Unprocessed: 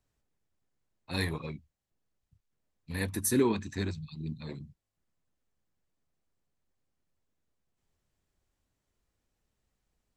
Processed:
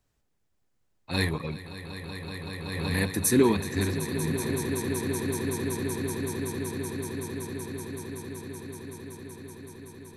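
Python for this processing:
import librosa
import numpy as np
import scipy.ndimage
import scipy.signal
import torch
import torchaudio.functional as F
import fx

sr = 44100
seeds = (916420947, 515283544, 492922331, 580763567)

y = fx.echo_swell(x, sr, ms=189, loudest=8, wet_db=-12.5)
y = fx.pre_swell(y, sr, db_per_s=31.0, at=(1.56, 2.99), fade=0.02)
y = y * 10.0 ** (5.0 / 20.0)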